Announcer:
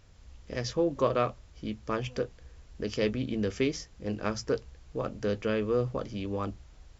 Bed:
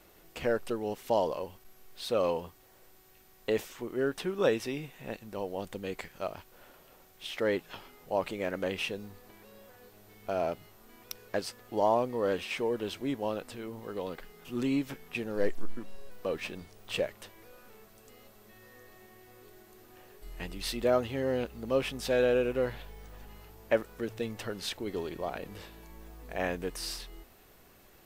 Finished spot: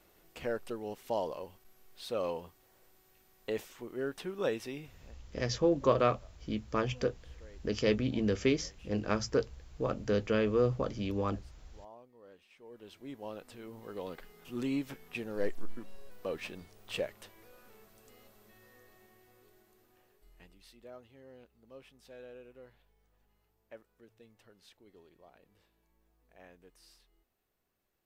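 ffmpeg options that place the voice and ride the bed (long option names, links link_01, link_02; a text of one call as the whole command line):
ffmpeg -i stem1.wav -i stem2.wav -filter_complex "[0:a]adelay=4850,volume=0dB[link_01];[1:a]volume=17dB,afade=type=out:start_time=4.78:duration=0.36:silence=0.0891251,afade=type=in:start_time=12.58:duration=1.5:silence=0.0707946,afade=type=out:start_time=18.2:duration=2.48:silence=0.1[link_02];[link_01][link_02]amix=inputs=2:normalize=0" out.wav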